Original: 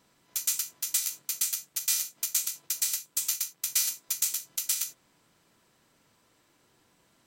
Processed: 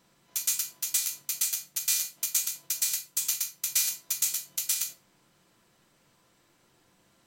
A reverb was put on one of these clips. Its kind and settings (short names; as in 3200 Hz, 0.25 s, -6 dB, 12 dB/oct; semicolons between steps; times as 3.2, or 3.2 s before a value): shoebox room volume 360 m³, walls furnished, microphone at 0.86 m